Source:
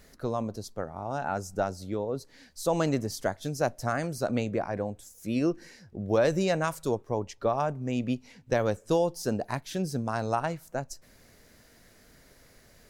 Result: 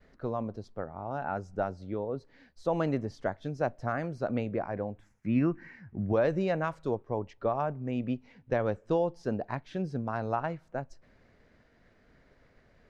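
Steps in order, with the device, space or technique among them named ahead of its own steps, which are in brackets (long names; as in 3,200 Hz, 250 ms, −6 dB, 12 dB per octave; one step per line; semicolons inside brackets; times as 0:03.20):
hearing-loss simulation (low-pass filter 2,400 Hz 12 dB per octave; downward expander −56 dBFS)
0:04.98–0:06.13: octave-band graphic EQ 125/250/500/1,000/2,000/4,000/8,000 Hz +7/+5/−9/+5/+9/−7/−4 dB
level −2.5 dB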